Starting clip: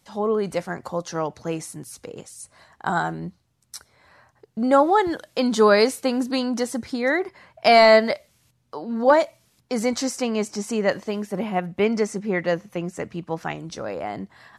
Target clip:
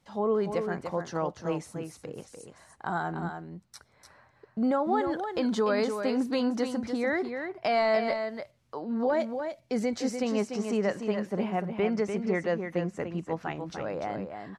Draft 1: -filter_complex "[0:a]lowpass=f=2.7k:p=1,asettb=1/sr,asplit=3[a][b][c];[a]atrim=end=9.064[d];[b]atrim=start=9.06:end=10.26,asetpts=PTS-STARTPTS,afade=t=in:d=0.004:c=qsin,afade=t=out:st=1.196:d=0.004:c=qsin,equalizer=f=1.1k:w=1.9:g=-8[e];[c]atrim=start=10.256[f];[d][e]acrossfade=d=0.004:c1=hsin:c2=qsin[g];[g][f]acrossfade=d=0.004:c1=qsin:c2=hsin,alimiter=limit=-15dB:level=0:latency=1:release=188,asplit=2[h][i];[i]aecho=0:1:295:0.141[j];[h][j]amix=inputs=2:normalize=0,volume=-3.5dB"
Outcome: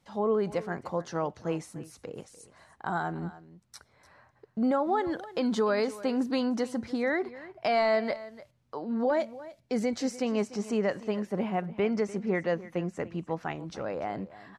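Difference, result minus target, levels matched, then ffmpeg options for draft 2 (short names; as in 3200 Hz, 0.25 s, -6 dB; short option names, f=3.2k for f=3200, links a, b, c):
echo-to-direct -10 dB
-filter_complex "[0:a]lowpass=f=2.7k:p=1,asettb=1/sr,asplit=3[a][b][c];[a]atrim=end=9.064[d];[b]atrim=start=9.06:end=10.26,asetpts=PTS-STARTPTS,afade=t=in:d=0.004:c=qsin,afade=t=out:st=1.196:d=0.004:c=qsin,equalizer=f=1.1k:w=1.9:g=-8[e];[c]atrim=start=10.256[f];[d][e]acrossfade=d=0.004:c1=hsin:c2=qsin[g];[g][f]acrossfade=d=0.004:c1=qsin:c2=hsin,alimiter=limit=-15dB:level=0:latency=1:release=188,asplit=2[h][i];[i]aecho=0:1:295:0.447[j];[h][j]amix=inputs=2:normalize=0,volume=-3.5dB"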